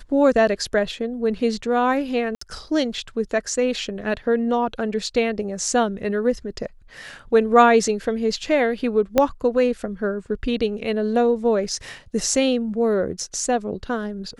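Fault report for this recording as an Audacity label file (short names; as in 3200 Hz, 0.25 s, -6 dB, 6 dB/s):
2.350000	2.410000	gap 64 ms
9.180000	9.180000	pop -4 dBFS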